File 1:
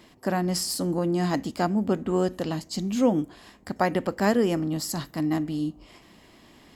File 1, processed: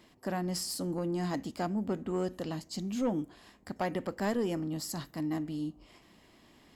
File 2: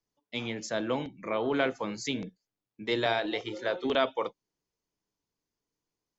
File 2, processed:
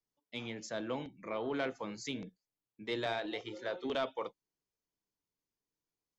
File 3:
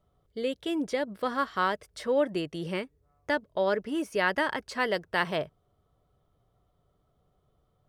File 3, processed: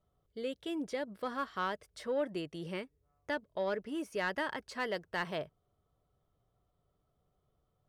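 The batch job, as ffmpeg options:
-af "asoftclip=type=tanh:threshold=-16dB,volume=-7dB"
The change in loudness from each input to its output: −8.5, −7.5, −8.0 LU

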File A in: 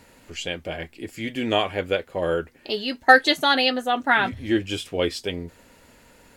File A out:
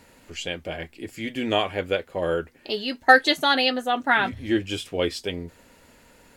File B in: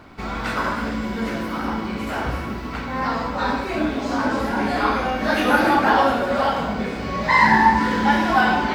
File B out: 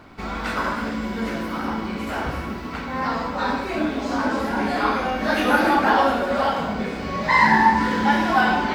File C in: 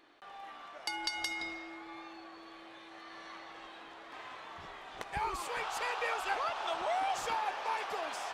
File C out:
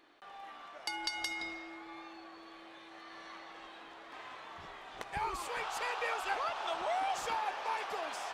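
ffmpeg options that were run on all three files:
-af "bandreject=frequency=60:width_type=h:width=6,bandreject=frequency=120:width_type=h:width=6,volume=-1dB"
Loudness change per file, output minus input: −1.0, −1.0, −1.0 LU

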